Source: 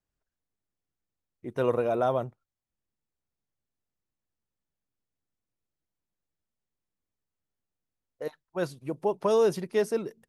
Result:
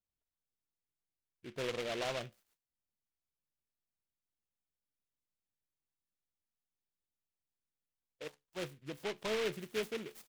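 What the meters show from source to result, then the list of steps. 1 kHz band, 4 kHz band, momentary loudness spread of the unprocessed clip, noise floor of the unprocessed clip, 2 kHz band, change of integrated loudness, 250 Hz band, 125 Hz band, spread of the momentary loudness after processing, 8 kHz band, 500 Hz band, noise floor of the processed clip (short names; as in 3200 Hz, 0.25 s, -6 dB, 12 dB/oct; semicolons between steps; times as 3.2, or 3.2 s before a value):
-13.5 dB, +3.0 dB, 16 LU, under -85 dBFS, -1.5 dB, -11.5 dB, -11.5 dB, -12.0 dB, 14 LU, n/a, -13.0 dB, under -85 dBFS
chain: soft clip -19 dBFS, distortion -17 dB; high shelf 8300 Hz +7 dB; resonator 72 Hz, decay 0.23 s, harmonics all, mix 50%; bands offset in time lows, highs 0.31 s, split 5600 Hz; noise-modulated delay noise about 2200 Hz, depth 0.15 ms; gain -7 dB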